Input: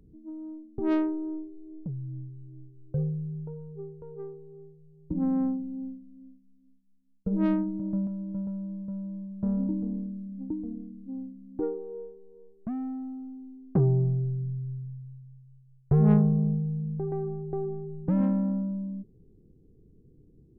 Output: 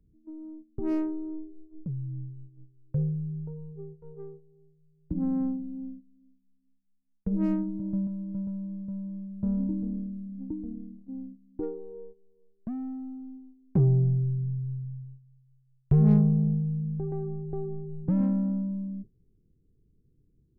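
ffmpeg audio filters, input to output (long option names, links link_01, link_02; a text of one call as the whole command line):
ffmpeg -i in.wav -filter_complex "[0:a]agate=range=-11dB:threshold=-43dB:ratio=16:detection=peak,acrossover=split=560[link_01][link_02];[link_02]asoftclip=type=hard:threshold=-33.5dB[link_03];[link_01][link_03]amix=inputs=2:normalize=0,lowshelf=frequency=220:gain=10.5,volume=-6dB" out.wav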